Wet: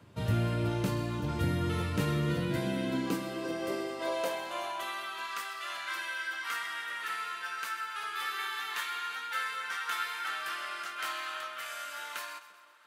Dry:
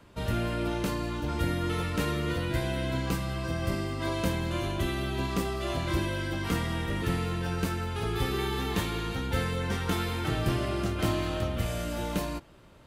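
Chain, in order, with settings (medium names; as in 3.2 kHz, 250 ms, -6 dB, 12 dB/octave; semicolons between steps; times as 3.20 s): two-band feedback delay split 770 Hz, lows 345 ms, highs 129 ms, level -14 dB; high-pass sweep 110 Hz -> 1.4 kHz, 1.94–5.40 s; trim -3.5 dB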